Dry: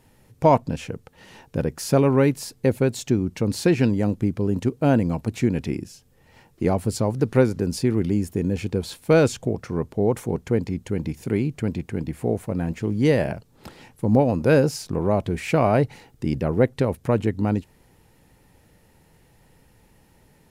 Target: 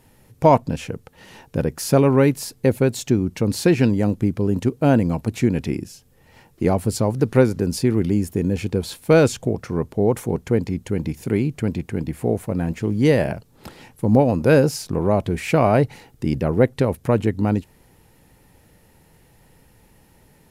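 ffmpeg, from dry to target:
-af "equalizer=f=12k:w=1.7:g=4,volume=2.5dB"

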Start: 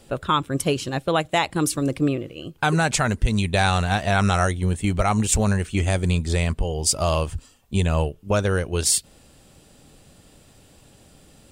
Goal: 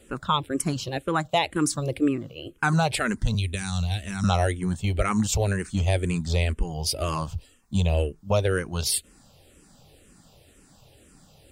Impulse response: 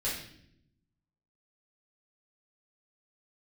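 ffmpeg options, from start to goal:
-filter_complex "[0:a]asettb=1/sr,asplit=3[a][b][c];[a]atrim=end=3.344[d];[b]atrim=start=3.34:end=4.24,asetpts=PTS-STARTPTS,afade=t=in:d=0.004:c=qsin,afade=t=out:st=0.896:d=0.004:c=qsin,acrossover=split=220|3000[e][f][g];[f]acompressor=threshold=-38dB:ratio=4[h];[e][h][g]amix=inputs=3:normalize=0[i];[c]atrim=start=4.236[j];[d][i]acrossfade=d=0.004:c1=hsin:c2=qsin[k];[k][j]acrossfade=d=0.004:c1=qsin:c2=hsin,asplit=2[l][m];[m]afreqshift=-2[n];[l][n]amix=inputs=2:normalize=1"

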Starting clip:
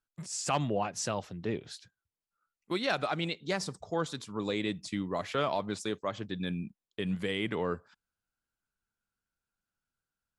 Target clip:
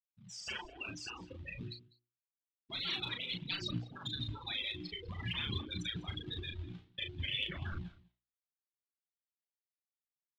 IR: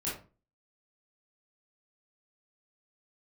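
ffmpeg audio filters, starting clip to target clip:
-filter_complex "[0:a]afftfilt=real='re*gte(hypot(re,im),0.0251)':imag='im*gte(hypot(re,im),0.0251)':win_size=1024:overlap=0.75,bandreject=f=60:t=h:w=6,bandreject=f=120:t=h:w=6,bandreject=f=180:t=h:w=6,bandreject=f=240:t=h:w=6,bandreject=f=300:t=h:w=6,bandreject=f=360:t=h:w=6,afftfilt=real='re*lt(hypot(re,im),0.0178)':imag='im*lt(hypot(re,im),0.0178)':win_size=1024:overlap=0.75,asubboost=boost=6:cutoff=210,asplit=2[a][b];[b]acrusher=bits=3:mode=log:mix=0:aa=0.000001,volume=-5.5dB[c];[a][c]amix=inputs=2:normalize=0,lowpass=f=3.5k:t=q:w=2.9,aphaser=in_gain=1:out_gain=1:delay=3.2:decay=0.44:speed=0.53:type=triangular,asplit=2[d][e];[e]adelay=36,volume=-6.5dB[f];[d][f]amix=inputs=2:normalize=0,aecho=1:1:199:0.0794,volume=5.5dB"

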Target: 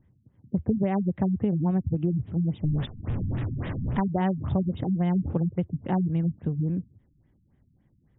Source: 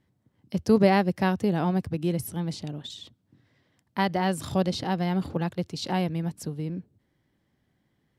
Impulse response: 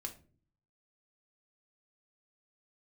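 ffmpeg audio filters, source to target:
-filter_complex "[0:a]asettb=1/sr,asplit=3[a][b][c];[a]atrim=end=2.644[d];[b]atrim=start=2.64:end=4,asetpts=PTS-STARTPTS,afade=t=in:d=0.004:c=qsin,afade=t=out:st=1.356:d=0.004:c=qsin,aeval=exprs='val(0)+0.5*0.0335*sgn(val(0))':c=same[e];[c]atrim=start=3.996[f];[d][e]acrossfade=d=0.004:c1=hsin:c2=qsin[g];[g][f]acrossfade=d=0.004:c1=qsin:c2=hsin,aemphasis=mode=reproduction:type=bsi,acompressor=threshold=-21dB:ratio=10,afftfilt=real='re*lt(b*sr/1024,270*pow(3900/270,0.5+0.5*sin(2*PI*3.6*pts/sr)))':imag='im*lt(b*sr/1024,270*pow(3900/270,0.5+0.5*sin(2*PI*3.6*pts/sr)))':win_size=1024:overlap=0.75"

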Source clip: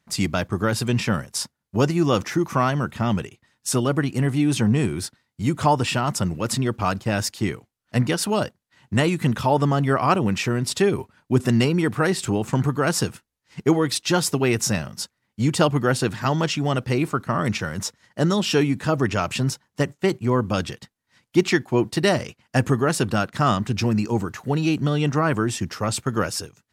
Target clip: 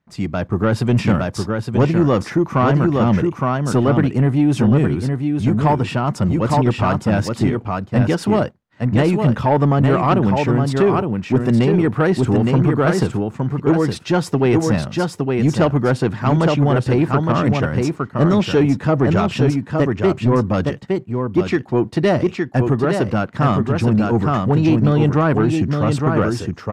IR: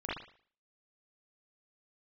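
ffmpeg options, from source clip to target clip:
-filter_complex "[0:a]lowpass=f=1.1k:p=1,asplit=2[a][b];[b]aecho=0:1:864:0.562[c];[a][c]amix=inputs=2:normalize=0,dynaudnorm=f=120:g=7:m=11.5dB,asoftclip=type=tanh:threshold=-6.5dB"

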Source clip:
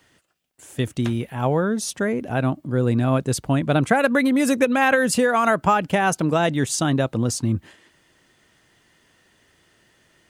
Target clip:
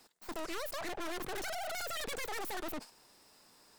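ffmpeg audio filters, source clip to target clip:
-af "aeval=exprs='(mod(3.16*val(0)+1,2)-1)/3.16':c=same,aeval=exprs='(tanh(89.1*val(0)+0.6)-tanh(0.6))/89.1':c=same,asetrate=119952,aresample=44100"

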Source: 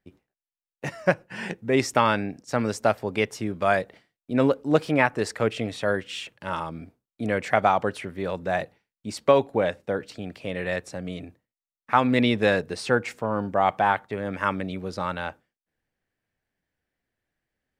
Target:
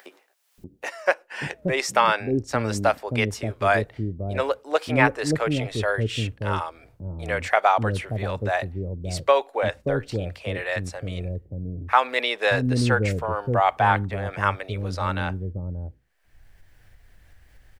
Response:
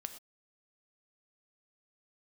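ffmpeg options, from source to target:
-filter_complex "[0:a]asubboost=boost=10:cutoff=65,acrossover=split=420[a][b];[a]adelay=580[c];[c][b]amix=inputs=2:normalize=0,acompressor=mode=upward:threshold=-37dB:ratio=2.5,volume=3dB"

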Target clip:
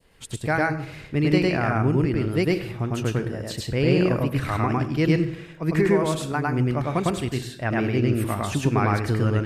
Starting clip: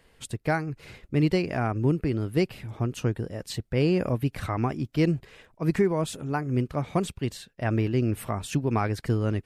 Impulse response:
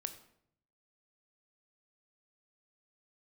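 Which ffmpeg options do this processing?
-filter_complex "[0:a]adynamicequalizer=threshold=0.00794:dfrequency=1700:dqfactor=0.92:tfrequency=1700:tqfactor=0.92:attack=5:release=100:ratio=0.375:range=2.5:mode=boostabove:tftype=bell,asplit=2[a][b];[1:a]atrim=start_sample=2205,adelay=104[c];[b][c]afir=irnorm=-1:irlink=0,volume=2.5dB[d];[a][d]amix=inputs=2:normalize=0"

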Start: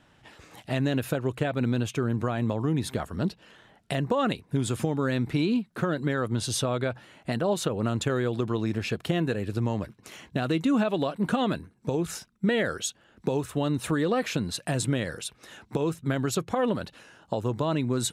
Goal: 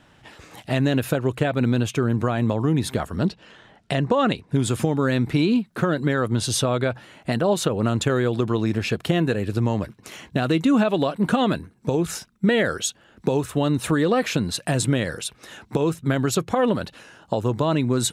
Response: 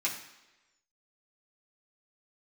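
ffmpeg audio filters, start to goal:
-filter_complex "[0:a]asettb=1/sr,asplit=3[a][b][c];[a]atrim=end=3.274[d];[b]atrim=start=3.27:end=4.54,asetpts=PTS-STARTPTS,afade=t=in:d=0.004:c=qsin,afade=t=out:st=1.266:d=0.004:c=qsin,lowpass=7.6k[e];[c]atrim=start=4.536[f];[d][e]acrossfade=d=0.004:c1=hsin:c2=qsin[g];[g][f]acrossfade=d=0.004:c1=qsin:c2=hsin,volume=5.5dB"

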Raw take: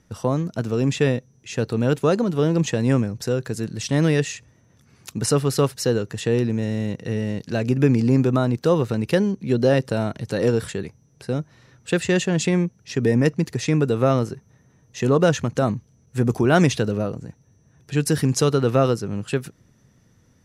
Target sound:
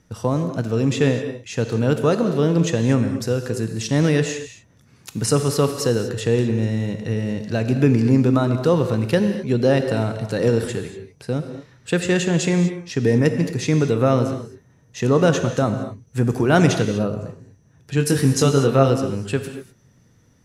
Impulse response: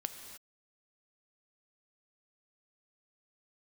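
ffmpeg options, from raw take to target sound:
-filter_complex "[0:a]asettb=1/sr,asplit=3[a][b][c];[a]atrim=end=17.954[d];[b]atrim=start=17.95:end=18.89,asetpts=PTS-STARTPTS,afade=t=in:d=0.004:c=qsin,afade=t=out:st=0.936:d=0.004:c=qsin,asplit=2[e][f];[f]adelay=22,volume=-6dB[g];[e][g]amix=inputs=2:normalize=0,atrim=end_sample=41454[h];[c]atrim=start=18.886[i];[d][h]acrossfade=d=0.004:c1=hsin:c2=qsin[j];[j][i]acrossfade=d=0.004:c1=qsin:c2=hsin[k];[1:a]atrim=start_sample=2205,afade=t=out:st=0.3:d=0.01,atrim=end_sample=13671[l];[k][l]afir=irnorm=-1:irlink=0,volume=2dB"

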